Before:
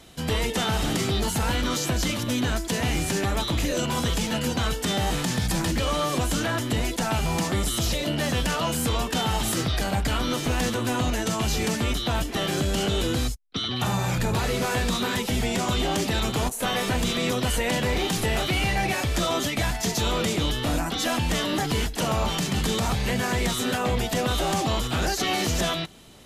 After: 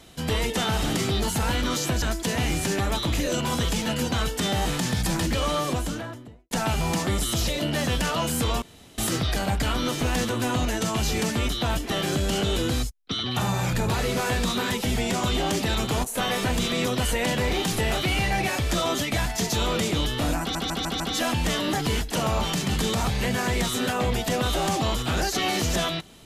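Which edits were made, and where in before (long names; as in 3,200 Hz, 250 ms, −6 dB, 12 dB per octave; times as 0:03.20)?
0:02.02–0:02.47: remove
0:05.96–0:06.96: fade out and dull
0:09.07–0:09.43: fill with room tone
0:20.85: stutter 0.15 s, 5 plays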